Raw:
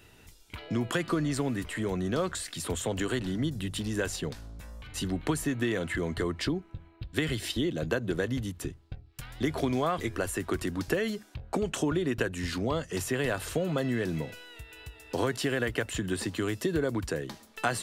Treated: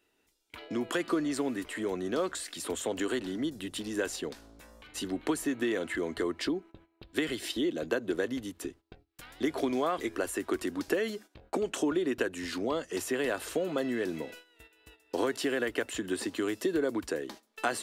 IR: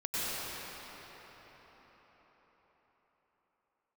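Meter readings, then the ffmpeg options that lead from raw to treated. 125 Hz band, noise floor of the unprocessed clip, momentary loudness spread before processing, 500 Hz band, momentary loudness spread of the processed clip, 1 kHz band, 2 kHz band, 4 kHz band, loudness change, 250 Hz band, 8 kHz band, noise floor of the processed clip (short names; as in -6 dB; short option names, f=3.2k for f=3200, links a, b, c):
-14.5 dB, -57 dBFS, 11 LU, 0.0 dB, 9 LU, -1.5 dB, -2.0 dB, -2.0 dB, -1.5 dB, -1.0 dB, -2.0 dB, -73 dBFS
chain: -af "agate=range=-14dB:threshold=-45dB:ratio=16:detection=peak,lowshelf=f=200:t=q:w=1.5:g=-12,volume=-2dB"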